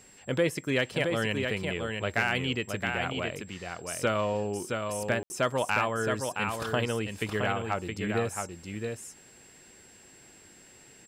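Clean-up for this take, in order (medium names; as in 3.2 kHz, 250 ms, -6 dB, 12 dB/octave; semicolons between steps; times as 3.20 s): clip repair -15 dBFS; band-stop 7.6 kHz, Q 30; room tone fill 5.23–5.30 s; inverse comb 669 ms -5 dB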